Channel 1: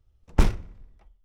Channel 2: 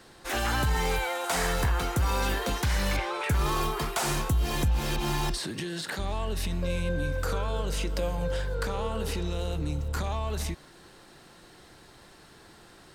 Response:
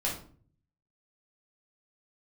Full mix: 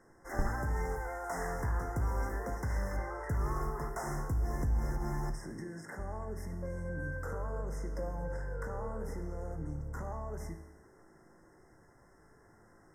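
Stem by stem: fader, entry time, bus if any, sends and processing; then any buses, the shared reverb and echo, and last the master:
-5.0 dB, 0.00 s, no send, dry
-0.5 dB, 0.00 s, send -17.5 dB, dry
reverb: on, RT60 0.45 s, pre-delay 7 ms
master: FFT band-reject 2100–5000 Hz; high shelf 2200 Hz -9 dB; resonator 54 Hz, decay 1.1 s, harmonics all, mix 70%

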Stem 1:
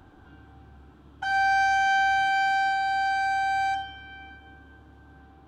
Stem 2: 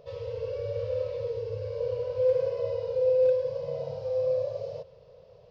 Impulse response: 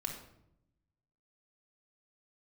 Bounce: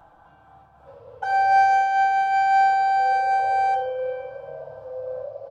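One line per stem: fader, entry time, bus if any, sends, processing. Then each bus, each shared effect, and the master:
-1.0 dB, 0.00 s, no send, tone controls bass -3 dB, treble +7 dB; comb 6 ms, depth 52%; noise-modulated level, depth 60%
1.5 s -13.5 dB -> 1.83 s -21 dB -> 2.95 s -21 dB -> 3.54 s -10.5 dB, 0.80 s, no send, dry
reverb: off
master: EQ curve 160 Hz 0 dB, 370 Hz -10 dB, 610 Hz +13 dB, 960 Hz +10 dB, 1900 Hz 0 dB, 4200 Hz -7 dB

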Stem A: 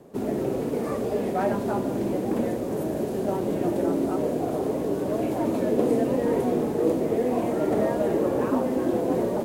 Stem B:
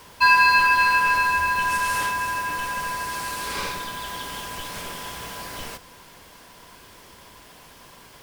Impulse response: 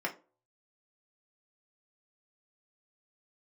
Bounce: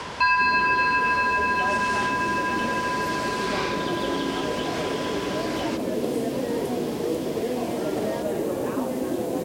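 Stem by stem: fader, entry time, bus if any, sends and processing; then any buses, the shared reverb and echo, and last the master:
-5.0 dB, 0.25 s, no send, dry
+0.5 dB, 0.00 s, no send, Bessel low-pass 5300 Hz, order 4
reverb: off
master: HPF 43 Hz; three-band squash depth 70%

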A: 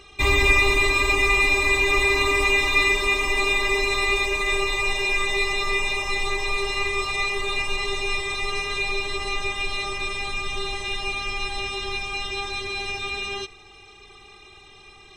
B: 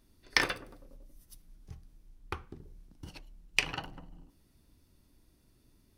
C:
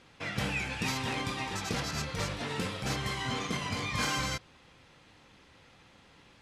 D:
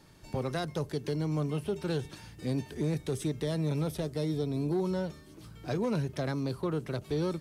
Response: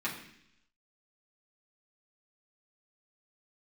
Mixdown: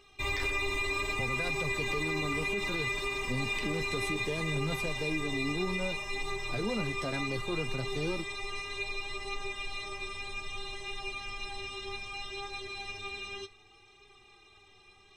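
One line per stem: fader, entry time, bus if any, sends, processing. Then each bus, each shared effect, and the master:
-7.5 dB, 0.00 s, no send, dry
-7.0 dB, 0.00 s, no send, dry
-16.5 dB, 0.65 s, no send, dry
+1.5 dB, 0.85 s, no send, dry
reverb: off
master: flange 0.64 Hz, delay 7.2 ms, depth 3.8 ms, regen +40%; limiter -23 dBFS, peak gain reduction 8 dB

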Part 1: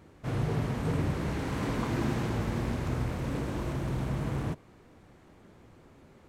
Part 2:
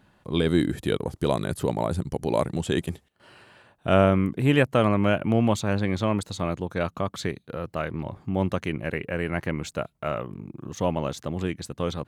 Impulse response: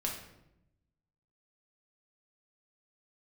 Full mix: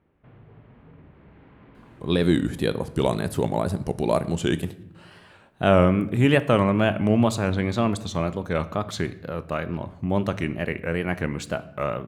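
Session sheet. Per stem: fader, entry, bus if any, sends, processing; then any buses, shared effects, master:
-14.0 dB, 0.00 s, send -10 dB, inverse Chebyshev low-pass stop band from 7400 Hz, stop band 50 dB; compressor 2:1, threshold -42 dBFS, peak gain reduction 9.5 dB
-0.5 dB, 1.75 s, send -11.5 dB, wow and flutter 120 cents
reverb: on, RT60 0.85 s, pre-delay 5 ms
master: dry

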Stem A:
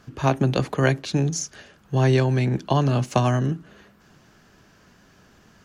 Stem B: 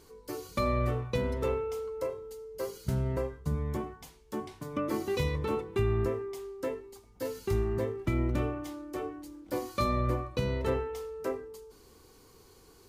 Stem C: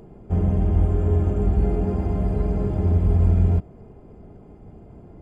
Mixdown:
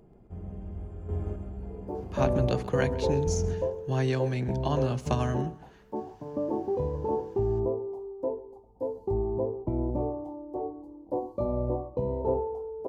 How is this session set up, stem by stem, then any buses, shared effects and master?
-8.5 dB, 1.95 s, no send, echo send -20.5 dB, dry
-2.0 dB, 1.60 s, no send, echo send -21.5 dB, EQ curve 170 Hz 0 dB, 910 Hz +9 dB, 1400 Hz -28 dB
-11.5 dB, 0.00 s, no send, echo send -7.5 dB, chopper 0.92 Hz, depth 60%, duty 25%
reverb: off
echo: feedback echo 0.134 s, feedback 30%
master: dry

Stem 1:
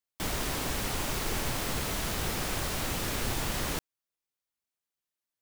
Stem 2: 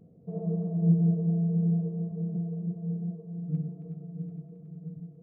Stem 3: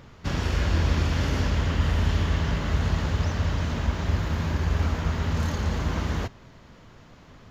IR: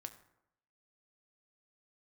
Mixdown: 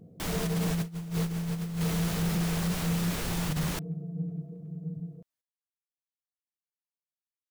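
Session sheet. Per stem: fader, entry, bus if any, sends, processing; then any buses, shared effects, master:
-3.5 dB, 0.00 s, no send, dry
0.0 dB, 0.00 s, send -8.5 dB, dry
off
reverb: on, RT60 0.80 s, pre-delay 4 ms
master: negative-ratio compressor -27 dBFS, ratio -0.5; soft clip -21 dBFS, distortion -20 dB

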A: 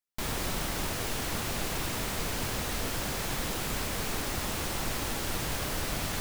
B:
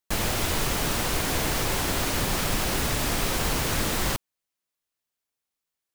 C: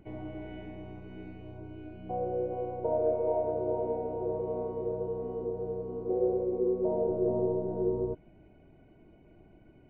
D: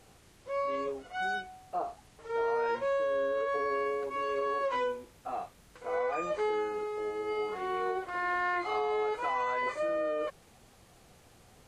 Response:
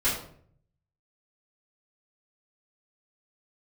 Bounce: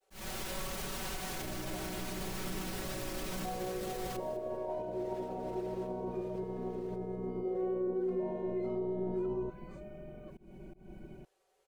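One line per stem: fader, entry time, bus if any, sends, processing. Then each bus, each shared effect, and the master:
-19.0 dB, 0.75 s, bus B, no send, echo send -21.5 dB, LPF 2800 Hz 6 dB/oct; limiter -28 dBFS, peak gain reduction 7 dB
-12.0 dB, 0.00 s, bus A, no send, echo send -23.5 dB, dry
+3.0 dB, 1.35 s, bus A, no send, no echo send, tilt shelf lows +4.5 dB, about 660 Hz; compressor 1.5:1, threshold -34 dBFS, peak gain reduction 5 dB; high shelf 3300 Hz +10.5 dB
-18.0 dB, 0.00 s, bus B, no send, no echo send, expander -56 dBFS
bus A: 0.0 dB, limiter -32 dBFS, peak gain reduction 14.5 dB
bus B: 0.0 dB, resonant low shelf 300 Hz -13 dB, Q 3; limiter -48.5 dBFS, peak gain reduction 14.5 dB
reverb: off
echo: feedback echo 0.203 s, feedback 29%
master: comb 5.3 ms, depth 80%; auto swell 0.189 s

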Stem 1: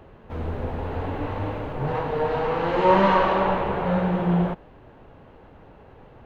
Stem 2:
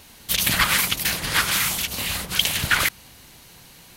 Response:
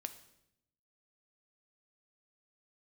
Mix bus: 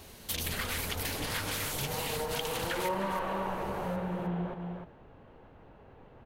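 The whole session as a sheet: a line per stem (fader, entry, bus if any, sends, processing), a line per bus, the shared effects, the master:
-10.5 dB, 0.00 s, send -1.5 dB, echo send -6.5 dB, dry
-5.5 dB, 0.00 s, no send, echo send -9 dB, compressor, threshold -22 dBFS, peak gain reduction 9 dB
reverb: on, RT60 0.80 s, pre-delay 3 ms
echo: echo 0.305 s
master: compressor 2.5:1, threshold -33 dBFS, peak gain reduction 10 dB

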